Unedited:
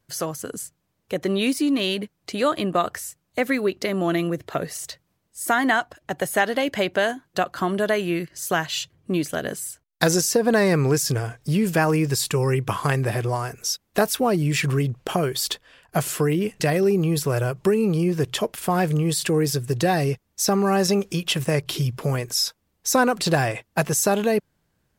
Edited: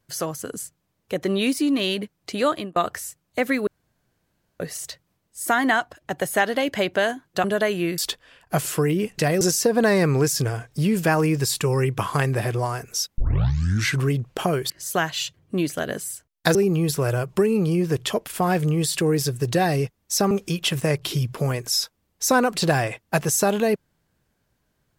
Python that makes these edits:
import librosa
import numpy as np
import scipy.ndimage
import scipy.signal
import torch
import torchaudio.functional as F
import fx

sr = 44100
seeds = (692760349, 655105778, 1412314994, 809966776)

y = fx.edit(x, sr, fx.fade_out_span(start_s=2.5, length_s=0.26),
    fx.room_tone_fill(start_s=3.67, length_s=0.93),
    fx.cut(start_s=7.44, length_s=0.28),
    fx.swap(start_s=8.26, length_s=1.85, other_s=15.4, other_length_s=1.43),
    fx.tape_start(start_s=13.88, length_s=0.83),
    fx.cut(start_s=20.59, length_s=0.36), tone=tone)